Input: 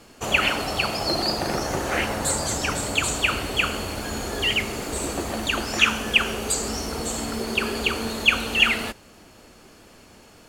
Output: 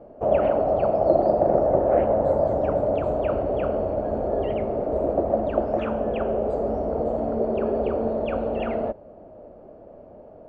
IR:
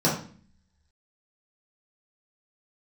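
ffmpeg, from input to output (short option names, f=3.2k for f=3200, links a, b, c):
-af "lowpass=f=610:t=q:w=5.6"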